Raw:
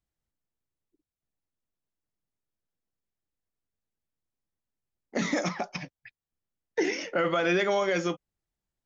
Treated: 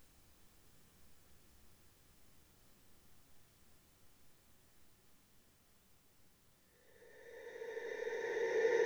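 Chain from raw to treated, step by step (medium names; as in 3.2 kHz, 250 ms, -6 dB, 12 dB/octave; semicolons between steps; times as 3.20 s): transient shaper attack +1 dB, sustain +8 dB; Paulstretch 38×, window 0.50 s, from 6.36 s; trim +17 dB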